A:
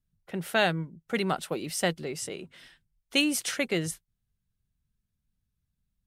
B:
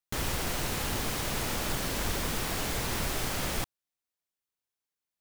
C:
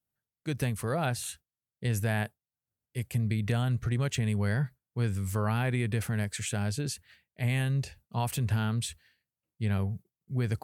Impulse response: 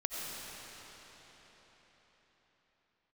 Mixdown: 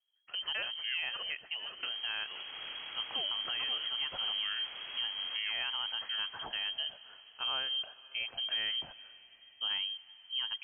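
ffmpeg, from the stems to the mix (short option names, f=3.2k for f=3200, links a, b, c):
-filter_complex "[0:a]volume=-5.5dB,asplit=2[a][b];[b]volume=-17dB[c];[1:a]afwtdn=0.0112,adelay=1750,volume=-13dB,asplit=2[d][e];[e]volume=-3dB[f];[2:a]lowshelf=f=100:g=-10.5,volume=-1.5dB,asplit=3[g][h][i];[h]volume=-21.5dB[j];[i]apad=whole_len=267542[k];[a][k]sidechaincompress=threshold=-37dB:ratio=8:attack=16:release=113[l];[3:a]atrim=start_sample=2205[m];[j][m]afir=irnorm=-1:irlink=0[n];[c][f]amix=inputs=2:normalize=0,aecho=0:1:524|1048|1572|2096|2620|3144|3668:1|0.48|0.23|0.111|0.0531|0.0255|0.0122[o];[l][d][g][n][o]amix=inputs=5:normalize=0,lowpass=f=2.8k:t=q:w=0.5098,lowpass=f=2.8k:t=q:w=0.6013,lowpass=f=2.8k:t=q:w=0.9,lowpass=f=2.8k:t=q:w=2.563,afreqshift=-3300,alimiter=level_in=2dB:limit=-24dB:level=0:latency=1:release=443,volume=-2dB"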